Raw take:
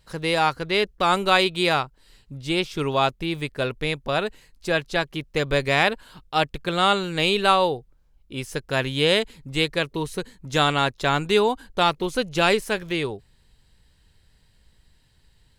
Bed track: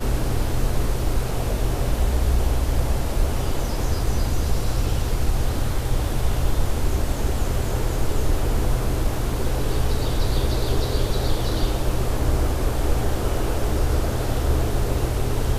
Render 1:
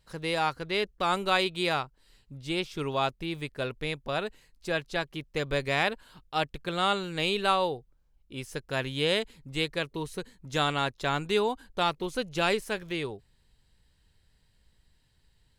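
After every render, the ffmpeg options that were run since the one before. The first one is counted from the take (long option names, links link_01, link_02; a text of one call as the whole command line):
ffmpeg -i in.wav -af "volume=-7dB" out.wav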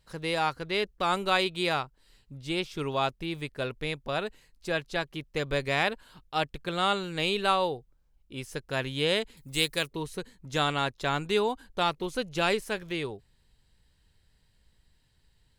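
ffmpeg -i in.wav -filter_complex "[0:a]asettb=1/sr,asplit=3[link_01][link_02][link_03];[link_01]atrim=end=9.374[link_04];[link_02]atrim=start=9.37:end=9.88,asetpts=PTS-STARTPTS,afade=type=in:duration=0.004:curve=qsin,afade=type=out:start_time=0.506:duration=0.004:curve=qsin,aemphasis=mode=production:type=75fm[link_05];[link_03]atrim=start=9.876[link_06];[link_04][link_05]acrossfade=duration=0.004:curve1=hsin:curve2=qsin[link_07];[link_07][link_06]acrossfade=duration=0.004:curve1=qsin:curve2=hsin" out.wav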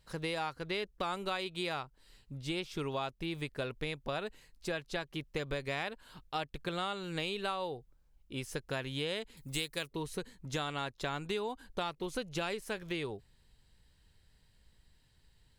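ffmpeg -i in.wav -af "acompressor=threshold=-33dB:ratio=6" out.wav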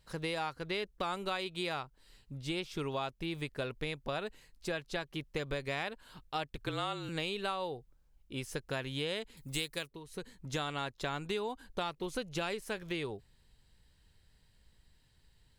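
ffmpeg -i in.wav -filter_complex "[0:a]asettb=1/sr,asplit=3[link_01][link_02][link_03];[link_01]atrim=end=6.574[link_04];[link_02]atrim=start=6.57:end=7.09,asetpts=PTS-STARTPTS,afade=type=in:duration=0.004:curve=qsin,afade=type=out:start_time=0.516:duration=0.004:curve=qsin,afreqshift=-38[link_05];[link_03]atrim=start=7.086[link_06];[link_04][link_05]acrossfade=duration=0.004:curve1=hsin:curve2=qsin[link_07];[link_07][link_06]acrossfade=duration=0.004:curve1=qsin:curve2=hsin,asplit=3[link_08][link_09][link_10];[link_08]atrim=end=10,asetpts=PTS-STARTPTS,afade=type=out:start_time=9.75:duration=0.25:silence=0.266073[link_11];[link_09]atrim=start=10:end=10.05,asetpts=PTS-STARTPTS,volume=-11.5dB[link_12];[link_10]atrim=start=10.05,asetpts=PTS-STARTPTS,afade=type=in:duration=0.25:silence=0.266073[link_13];[link_11][link_12][link_13]concat=n=3:v=0:a=1" out.wav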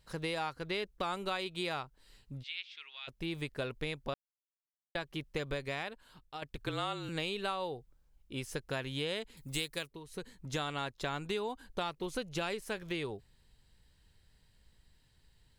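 ffmpeg -i in.wav -filter_complex "[0:a]asplit=3[link_01][link_02][link_03];[link_01]afade=type=out:start_time=2.42:duration=0.02[link_04];[link_02]asuperpass=centerf=2800:order=4:qfactor=1.3,afade=type=in:start_time=2.42:duration=0.02,afade=type=out:start_time=3.07:duration=0.02[link_05];[link_03]afade=type=in:start_time=3.07:duration=0.02[link_06];[link_04][link_05][link_06]amix=inputs=3:normalize=0,asplit=4[link_07][link_08][link_09][link_10];[link_07]atrim=end=4.14,asetpts=PTS-STARTPTS,afade=type=out:start_time=4.136:duration=0.004:curve=hsin[link_11];[link_08]atrim=start=4.14:end=4.95,asetpts=PTS-STARTPTS,volume=0[link_12];[link_09]atrim=start=4.95:end=6.42,asetpts=PTS-STARTPTS,afade=type=in:duration=0.004:curve=hsin,afade=type=out:start_time=0.54:duration=0.93:silence=0.354813[link_13];[link_10]atrim=start=6.42,asetpts=PTS-STARTPTS,afade=type=in:duration=0.004:curve=hsin:silence=0.354813[link_14];[link_11][link_12][link_13][link_14]concat=n=4:v=0:a=1" out.wav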